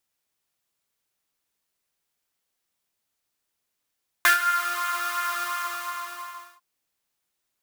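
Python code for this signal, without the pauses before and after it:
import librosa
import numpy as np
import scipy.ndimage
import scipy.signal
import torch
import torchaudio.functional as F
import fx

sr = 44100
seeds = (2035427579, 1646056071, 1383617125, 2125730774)

y = fx.sub_patch_pwm(sr, seeds[0], note=65, wave2='saw', interval_st=0, detune_cents=21, level2_db=-9.0, sub_db=-23.0, noise_db=-3.5, kind='highpass', cutoff_hz=1100.0, q=11.0, env_oct=0.5, env_decay_s=0.47, env_sustain_pct=35, attack_ms=1.6, decay_s=0.12, sustain_db=-14.0, release_s=1.26, note_s=1.09, lfo_hz=2.8, width_pct=21, width_swing_pct=14)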